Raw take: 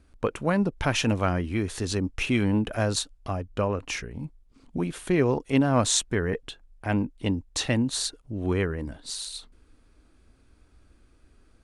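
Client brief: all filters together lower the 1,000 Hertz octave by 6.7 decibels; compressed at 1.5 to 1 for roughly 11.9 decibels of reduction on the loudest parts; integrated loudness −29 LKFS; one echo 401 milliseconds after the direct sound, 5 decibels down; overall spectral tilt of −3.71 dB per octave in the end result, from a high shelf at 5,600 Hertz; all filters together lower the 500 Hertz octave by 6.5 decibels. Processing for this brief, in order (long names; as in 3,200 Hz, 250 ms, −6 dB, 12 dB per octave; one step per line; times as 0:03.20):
parametric band 500 Hz −7 dB
parametric band 1,000 Hz −7 dB
high-shelf EQ 5,600 Hz +8.5 dB
downward compressor 1.5 to 1, threshold −50 dBFS
single-tap delay 401 ms −5 dB
level +7 dB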